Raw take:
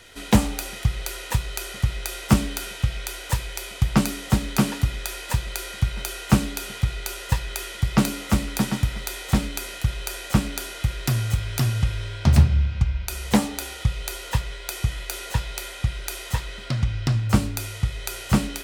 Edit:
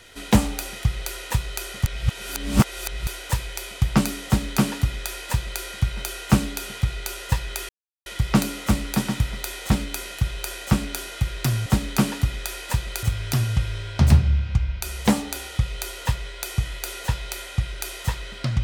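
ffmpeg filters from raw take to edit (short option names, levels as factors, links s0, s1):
-filter_complex "[0:a]asplit=6[s0][s1][s2][s3][s4][s5];[s0]atrim=end=1.862[s6];[s1]atrim=start=1.858:end=3.072,asetpts=PTS-STARTPTS,areverse[s7];[s2]atrim=start=3.068:end=7.69,asetpts=PTS-STARTPTS,afade=t=out:st=4.618:d=0.004:c=hsin,apad=pad_dur=0.37[s8];[s3]atrim=start=7.69:end=11.292,asetpts=PTS-STARTPTS,afade=t=in:d=0.004:c=hsin[s9];[s4]atrim=start=4.258:end=5.632[s10];[s5]atrim=start=11.288[s11];[s6][s7]acrossfade=d=0.004:c1=hsin:c2=hsin[s12];[s8][s9]concat=n=2:v=0:a=1[s13];[s12][s13]acrossfade=d=0.004:c1=hsin:c2=hsin[s14];[s14][s10]acrossfade=d=0.004:c1=hsin:c2=hsin[s15];[s15][s11]acrossfade=d=0.004:c1=hsin:c2=hsin"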